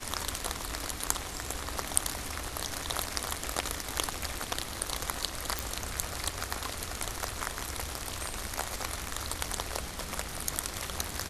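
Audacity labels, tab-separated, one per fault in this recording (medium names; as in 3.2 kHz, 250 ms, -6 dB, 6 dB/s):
5.590000	5.590000	pop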